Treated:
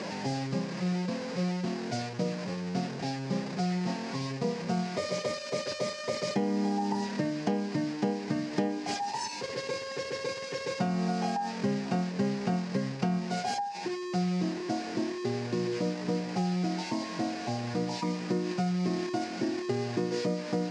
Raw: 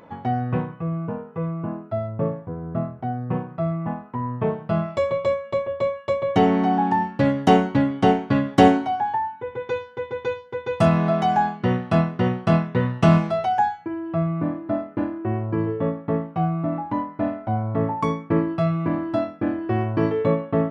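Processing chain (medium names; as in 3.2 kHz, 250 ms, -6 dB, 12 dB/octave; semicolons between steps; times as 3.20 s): one-bit delta coder 64 kbps, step -25 dBFS; peaking EQ 4.9 kHz +6.5 dB 0.24 oct; compression 16:1, threshold -21 dBFS, peak gain reduction 13.5 dB; cabinet simulation 140–6500 Hz, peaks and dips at 180 Hz +7 dB, 380 Hz +4 dB, 1.2 kHz -9 dB, 3.3 kHz -6 dB; formant-preserving pitch shift +1.5 st; trim -5.5 dB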